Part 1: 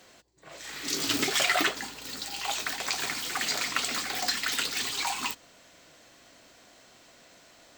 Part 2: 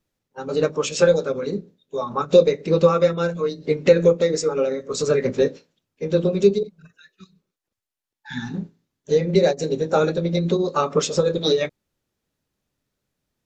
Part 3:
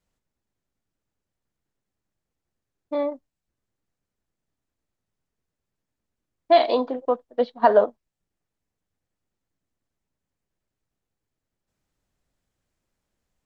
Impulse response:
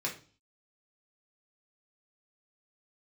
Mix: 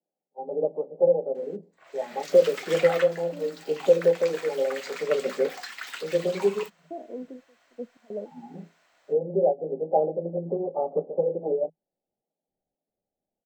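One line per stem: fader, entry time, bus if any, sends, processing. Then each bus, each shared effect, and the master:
-6.0 dB, 1.35 s, no send, high shelf 2700 Hz +9.5 dB
+2.5 dB, 0.00 s, no send, Chebyshev band-pass 160–810 Hz, order 5
-2.0 dB, 0.40 s, no send, inverse Chebyshev low-pass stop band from 1800 Hz, stop band 70 dB; bell 200 Hz +10.5 dB 0.87 oct; step gate ".xx.xxxx." 113 bpm -24 dB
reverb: off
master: three-band isolator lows -16 dB, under 560 Hz, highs -17 dB, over 2300 Hz

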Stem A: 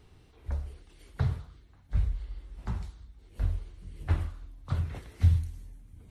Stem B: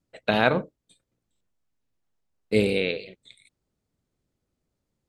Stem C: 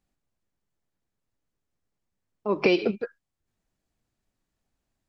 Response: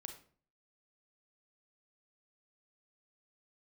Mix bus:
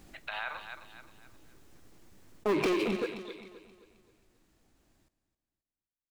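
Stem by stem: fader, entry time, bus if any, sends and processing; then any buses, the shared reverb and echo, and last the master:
off
+2.0 dB, 0.00 s, bus A, send -14.5 dB, echo send -22.5 dB, HPF 920 Hz 24 dB/oct
2.36 s -6.5 dB -> 2.93 s -19.5 dB, 0.00 s, no bus, no send, echo send -15 dB, bell 330 Hz +7 dB 0.49 oct; sample leveller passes 5; fast leveller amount 50%
bus A: 0.0 dB, LPF 3400 Hz 12 dB/oct; compressor, threshold -36 dBFS, peak gain reduction 17.5 dB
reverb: on, RT60 0.45 s, pre-delay 31 ms
echo: feedback echo 0.264 s, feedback 40%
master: limiter -23 dBFS, peak gain reduction 8.5 dB

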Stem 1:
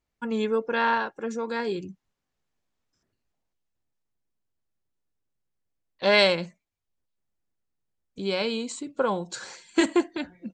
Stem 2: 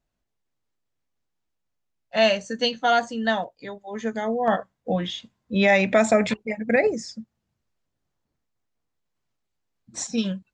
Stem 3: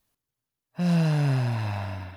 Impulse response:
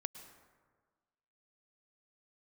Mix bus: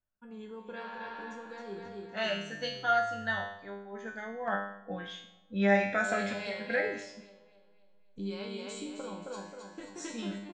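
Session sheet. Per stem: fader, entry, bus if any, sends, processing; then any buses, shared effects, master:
-6.0 dB, 0.00 s, bus A, no send, echo send -9.5 dB, AGC gain up to 14 dB; auto duck -12 dB, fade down 1.10 s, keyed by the second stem
-3.0 dB, 0.00 s, no bus, send -6 dB, no echo send, bell 1500 Hz +11.5 dB 0.51 oct
-13.0 dB, 1.45 s, bus A, no send, no echo send, half-wave rectifier; HPF 46 Hz
bus A: 0.0 dB, low shelf 140 Hz +10.5 dB; compressor 6:1, threshold -25 dBFS, peak gain reduction 9.5 dB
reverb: on, RT60 1.5 s, pre-delay 97 ms
echo: feedback echo 0.266 s, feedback 50%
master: resonator 100 Hz, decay 0.79 s, harmonics all, mix 90%; mismatched tape noise reduction decoder only

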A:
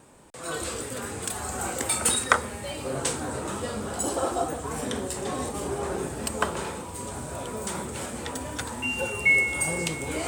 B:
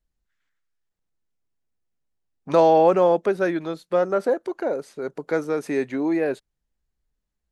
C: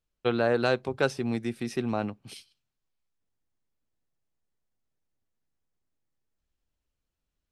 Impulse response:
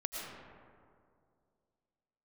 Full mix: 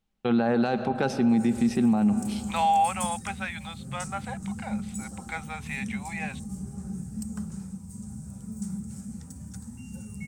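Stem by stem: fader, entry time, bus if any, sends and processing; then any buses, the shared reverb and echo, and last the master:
-3.5 dB, 0.95 s, no send, EQ curve 190 Hz 0 dB, 270 Hz -18 dB, 530 Hz -24 dB, 900 Hz -29 dB, 1300 Hz -20 dB, 3400 Hz -25 dB, 5700 Hz -4 dB
-6.0 dB, 0.00 s, no send, HPF 880 Hz 24 dB/oct; band shelf 2800 Hz +11.5 dB 1.1 oct
+3.0 dB, 0.00 s, send -15 dB, dry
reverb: on, RT60 2.3 s, pre-delay 70 ms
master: high shelf 5900 Hz -5 dB; small resonant body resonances 210/790 Hz, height 16 dB, ringing for 80 ms; limiter -15.5 dBFS, peak gain reduction 10.5 dB

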